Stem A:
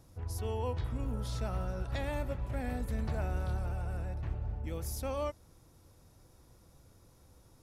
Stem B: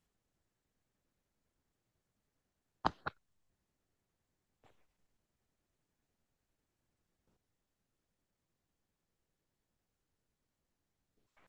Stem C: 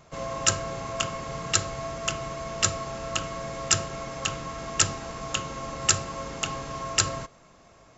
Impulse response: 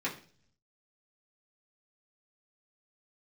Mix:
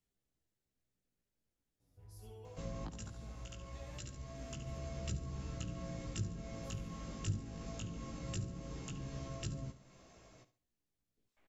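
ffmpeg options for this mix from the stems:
-filter_complex "[0:a]asplit=2[a][b];[b]adelay=7.8,afreqshift=0.27[c];[a][c]amix=inputs=2:normalize=1,adelay=1800,volume=-11dB,asplit=2[d][e];[e]volume=-3.5dB[f];[1:a]volume=-1.5dB,asplit=3[g][h][i];[h]volume=-11dB[j];[2:a]adelay=2450,volume=-1dB,asplit=2[k][l];[l]volume=-14.5dB[m];[i]apad=whole_len=459960[n];[k][n]sidechaincompress=threshold=-59dB:ratio=5:attack=20:release=1000[o];[f][j][m]amix=inputs=3:normalize=0,aecho=0:1:70|140|210|280:1|0.29|0.0841|0.0244[p];[d][g][o][p]amix=inputs=4:normalize=0,equalizer=f=1.1k:t=o:w=1.4:g=-7,acrossover=split=300[q][r];[r]acompressor=threshold=-48dB:ratio=4[s];[q][s]amix=inputs=2:normalize=0,flanger=delay=15:depth=3.6:speed=0.21"

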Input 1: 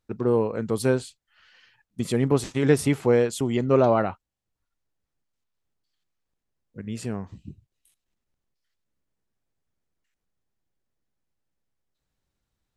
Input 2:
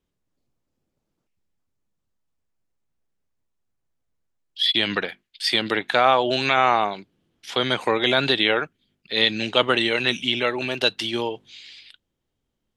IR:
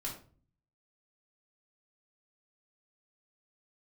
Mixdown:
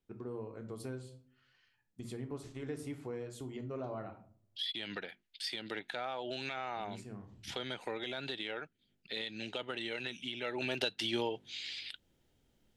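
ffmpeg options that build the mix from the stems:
-filter_complex "[0:a]volume=-10.5dB,asplit=2[a][b];[b]volume=-10dB[c];[1:a]bandreject=f=1.1k:w=5.4,alimiter=limit=-11.5dB:level=0:latency=1:release=337,acontrast=64,volume=-0.5dB,afade=t=in:st=10.41:d=0.46:silence=0.237137,asplit=2[d][e];[e]apad=whole_len=562843[f];[a][f]sidechaingate=range=-9dB:threshold=-42dB:ratio=16:detection=peak[g];[2:a]atrim=start_sample=2205[h];[c][h]afir=irnorm=-1:irlink=0[i];[g][d][i]amix=inputs=3:normalize=0,acompressor=threshold=-43dB:ratio=2"

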